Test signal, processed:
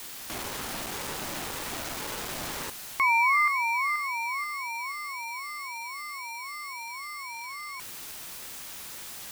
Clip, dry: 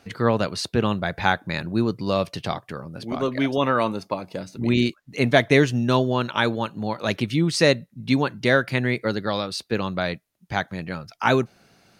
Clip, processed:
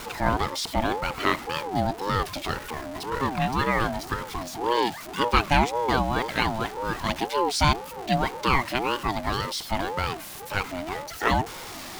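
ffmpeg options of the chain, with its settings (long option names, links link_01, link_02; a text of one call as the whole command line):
ffmpeg -i in.wav -af "aeval=exprs='val(0)+0.5*0.0376*sgn(val(0))':channel_layout=same,highpass=130,aeval=exprs='val(0)*sin(2*PI*580*n/s+580*0.25/1.9*sin(2*PI*1.9*n/s))':channel_layout=same,volume=-1dB" out.wav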